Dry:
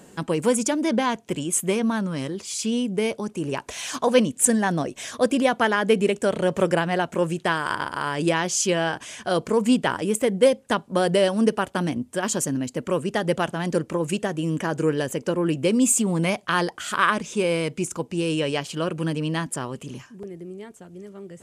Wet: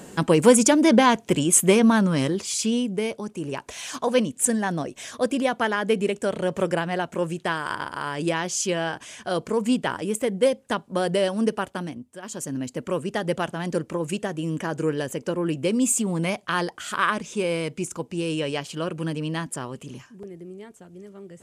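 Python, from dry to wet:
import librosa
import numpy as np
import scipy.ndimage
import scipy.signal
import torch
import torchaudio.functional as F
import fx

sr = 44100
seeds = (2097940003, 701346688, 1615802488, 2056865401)

y = fx.gain(x, sr, db=fx.line((2.29, 6.0), (3.07, -3.0), (11.65, -3.0), (12.18, -14.0), (12.6, -2.5)))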